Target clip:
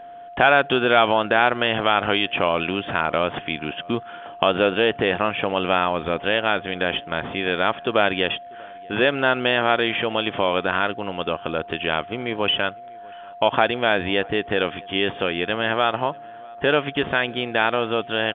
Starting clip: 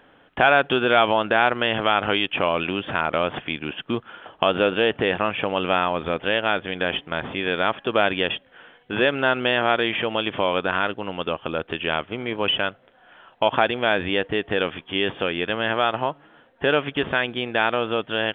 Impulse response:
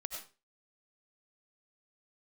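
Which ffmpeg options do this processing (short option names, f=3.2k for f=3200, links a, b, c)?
-filter_complex "[0:a]aeval=exprs='val(0)+0.0126*sin(2*PI*700*n/s)':c=same,asplit=2[a][b];[b]adelay=641.4,volume=-26dB,highshelf=f=4k:g=-14.4[c];[a][c]amix=inputs=2:normalize=0,volume=1dB"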